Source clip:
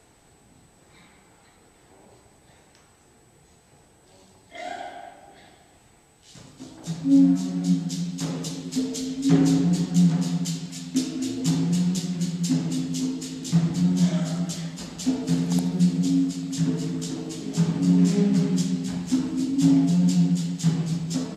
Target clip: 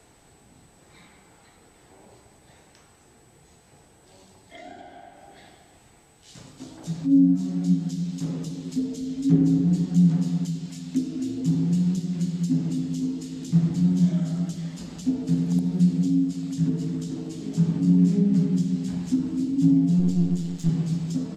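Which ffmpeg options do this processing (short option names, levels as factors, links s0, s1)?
-filter_complex "[0:a]asettb=1/sr,asplit=3[s0][s1][s2];[s0]atrim=end=19.994[s3];[s1]atrim=start=19.99:end=20.69,asetpts=PTS-STARTPTS,afade=t=in:d=0.004:c=qsin,afade=t=out:st=0.696:d=0.004:c=qsin,aeval=exprs='if(lt(val(0),0),0.447*val(0),val(0))':c=same[s4];[s2]atrim=start=20.686[s5];[s3][s4]acrossfade=d=0.004:c1=hsin:c2=qsin[s6];[s6][s5]acrossfade=d=0.004:c1=qsin:c2=hsin,acrossover=split=380[s7][s8];[s8]acompressor=threshold=0.00631:ratio=10[s9];[s7][s9]amix=inputs=2:normalize=0,volume=1.12"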